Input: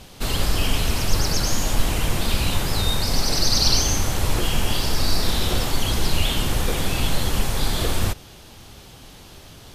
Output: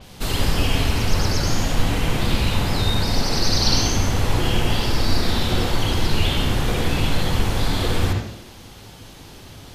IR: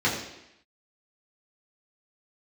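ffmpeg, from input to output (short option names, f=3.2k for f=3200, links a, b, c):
-filter_complex "[0:a]asplit=2[a][b];[1:a]atrim=start_sample=2205,adelay=62[c];[b][c]afir=irnorm=-1:irlink=0,volume=-16dB[d];[a][d]amix=inputs=2:normalize=0,adynamicequalizer=threshold=0.0141:dfrequency=5400:dqfactor=0.7:tfrequency=5400:tqfactor=0.7:attack=5:release=100:ratio=0.375:range=3.5:mode=cutabove:tftype=highshelf"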